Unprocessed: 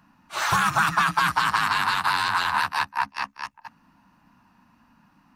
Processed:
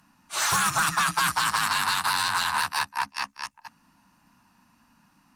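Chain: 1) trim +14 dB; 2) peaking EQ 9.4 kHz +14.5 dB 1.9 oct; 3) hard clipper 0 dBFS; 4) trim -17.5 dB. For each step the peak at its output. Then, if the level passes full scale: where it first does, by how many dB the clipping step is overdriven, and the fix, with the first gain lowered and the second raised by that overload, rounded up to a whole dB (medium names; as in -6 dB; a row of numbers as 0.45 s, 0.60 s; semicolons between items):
+4.0 dBFS, +10.0 dBFS, 0.0 dBFS, -17.5 dBFS; step 1, 10.0 dB; step 1 +4 dB, step 4 -7.5 dB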